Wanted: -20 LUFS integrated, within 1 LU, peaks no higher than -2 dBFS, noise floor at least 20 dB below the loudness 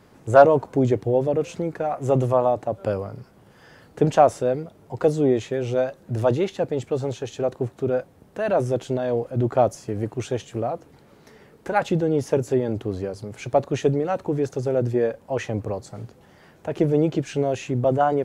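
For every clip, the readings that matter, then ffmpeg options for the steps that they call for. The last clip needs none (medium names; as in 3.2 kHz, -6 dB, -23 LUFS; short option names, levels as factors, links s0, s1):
loudness -23.0 LUFS; peak level -2.5 dBFS; loudness target -20.0 LUFS
-> -af "volume=1.41,alimiter=limit=0.794:level=0:latency=1"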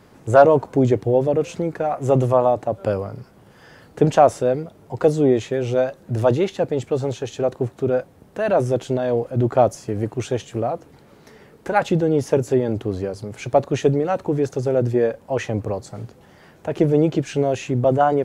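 loudness -20.5 LUFS; peak level -2.0 dBFS; noise floor -50 dBFS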